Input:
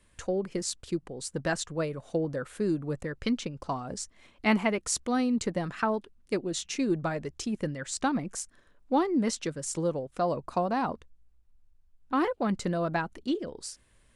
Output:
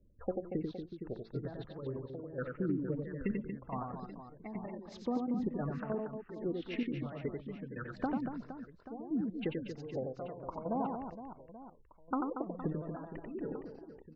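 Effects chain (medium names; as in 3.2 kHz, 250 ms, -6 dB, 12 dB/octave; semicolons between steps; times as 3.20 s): pitch shift switched off and on -2 st, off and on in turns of 356 ms; level-controlled noise filter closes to 510 Hz, open at -25.5 dBFS; low-pass 3.3 kHz 12 dB/octave; low-pass that closes with the level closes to 790 Hz, closed at -25 dBFS; compression 6:1, threshold -31 dBFS, peak gain reduction 10 dB; spectral gate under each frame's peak -25 dB strong; trance gate "x.x..x....x.x" 145 bpm -12 dB; reverse bouncing-ball echo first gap 90 ms, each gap 1.6×, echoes 5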